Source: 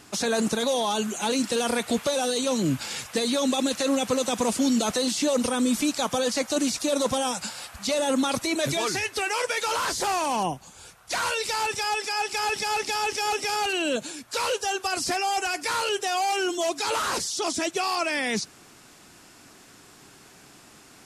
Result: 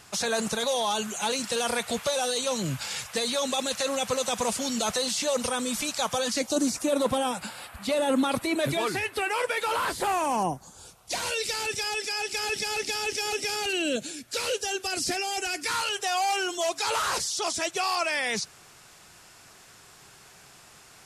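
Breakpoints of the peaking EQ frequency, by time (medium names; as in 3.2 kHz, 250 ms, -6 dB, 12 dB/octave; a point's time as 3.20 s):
peaking EQ -12.5 dB 0.83 oct
6.21 s 290 Hz
6.49 s 1.8 kHz
6.97 s 6 kHz
9.99 s 6 kHz
11.41 s 1 kHz
15.53 s 1 kHz
16.05 s 270 Hz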